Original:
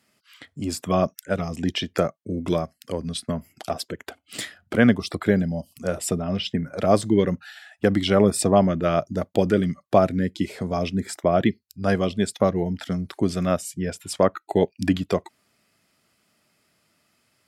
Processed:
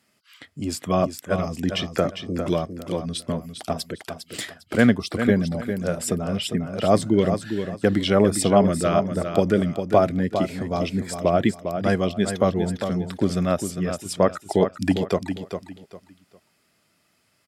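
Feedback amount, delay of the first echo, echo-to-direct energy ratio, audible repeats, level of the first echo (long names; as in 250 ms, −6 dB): 26%, 403 ms, −7.5 dB, 3, −8.0 dB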